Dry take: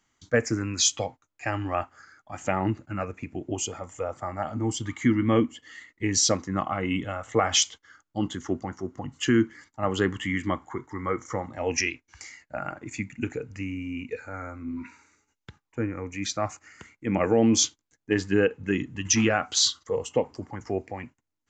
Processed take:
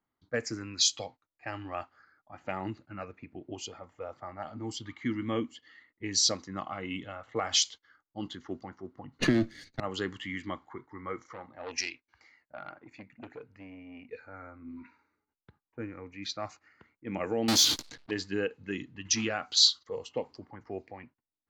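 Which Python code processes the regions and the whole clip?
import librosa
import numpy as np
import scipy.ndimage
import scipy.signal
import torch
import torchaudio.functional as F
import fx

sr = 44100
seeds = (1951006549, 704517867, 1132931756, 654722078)

y = fx.chain(x, sr, fx.lower_of_two(delay_ms=0.47),
    fx.low_shelf(hz=280.0, db=12.0),
    fx.band_squash(depth_pct=100), at=(9.19, 9.8))
y = fx.chain(y, sr, fx.low_shelf(hz=220.0, db=-6.5),
    fx.transformer_sat(knee_hz=1700.0), at=(11.22, 14.07))
y = fx.chain(y, sr, fx.halfwave_hold(),
    fx.sustainer(db_per_s=60.0), at=(17.48, 18.11))
y = fx.low_shelf(y, sr, hz=120.0, db=-6.5)
y = fx.env_lowpass(y, sr, base_hz=1100.0, full_db=-21.0)
y = fx.peak_eq(y, sr, hz=4300.0, db=13.0, octaves=0.67)
y = y * librosa.db_to_amplitude(-9.0)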